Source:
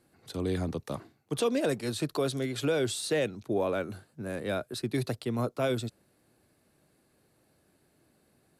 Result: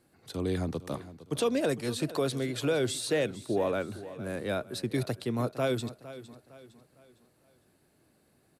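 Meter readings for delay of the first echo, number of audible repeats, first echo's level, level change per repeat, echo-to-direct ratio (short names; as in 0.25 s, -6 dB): 0.458 s, 3, -15.5 dB, -8.0 dB, -14.5 dB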